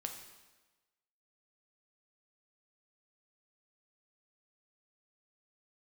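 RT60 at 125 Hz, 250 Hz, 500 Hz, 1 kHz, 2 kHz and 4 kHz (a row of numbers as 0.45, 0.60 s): 1.1, 1.2, 1.2, 1.2, 1.1, 1.1 s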